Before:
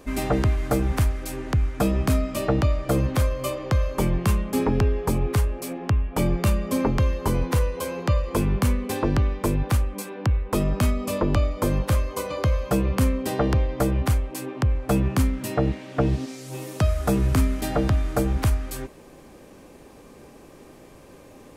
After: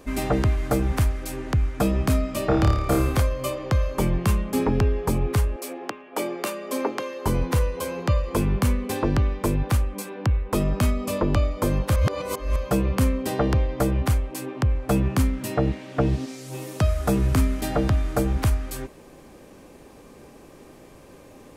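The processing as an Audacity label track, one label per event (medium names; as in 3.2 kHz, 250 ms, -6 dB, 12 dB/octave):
2.460000	3.200000	flutter echo walls apart 4.8 m, dies away in 0.62 s
5.560000	7.260000	high-pass 300 Hz 24 dB/octave
11.960000	12.560000	reverse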